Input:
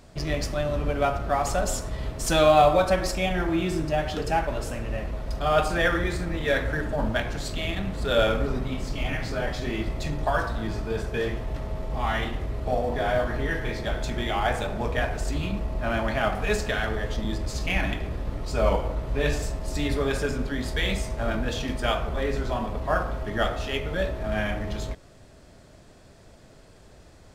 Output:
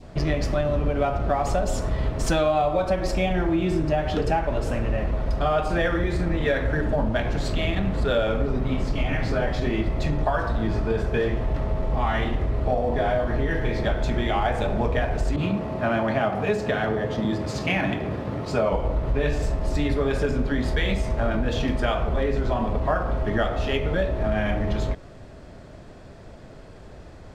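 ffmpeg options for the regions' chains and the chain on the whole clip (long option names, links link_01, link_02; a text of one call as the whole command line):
ffmpeg -i in.wav -filter_complex "[0:a]asettb=1/sr,asplit=3[link_01][link_02][link_03];[link_01]atrim=end=15.364[link_04];[link_02]atrim=start=15.36:end=18.73,asetpts=PTS-STARTPTS,afade=type=in:duration=0.004:curve=qsin,afade=type=out:start_time=3.366:duration=0.004:curve=qsin,highpass=frequency=100:width=0.5412,highpass=frequency=100:width=1.3066,adynamicequalizer=threshold=0.0112:dfrequency=1600:dqfactor=0.7:tfrequency=1600:tqfactor=0.7:attack=5:release=100:ratio=0.375:range=2.5:mode=cutabove:tftype=highshelf[link_05];[link_03]atrim=start=18.726[link_06];[link_04][link_05]acrossfade=duration=0.004:curve1=hsin:curve2=qsin[link_07];[link_07][link_06]acrossfade=duration=0.004:curve1=qsin:curve2=hsin,lowpass=frequency=2100:poles=1,adynamicequalizer=threshold=0.00891:dfrequency=1400:dqfactor=1.4:tfrequency=1400:tqfactor=1.4:attack=5:release=100:ratio=0.375:range=3:mode=cutabove:tftype=bell,acompressor=threshold=-27dB:ratio=6,volume=8dB" out.wav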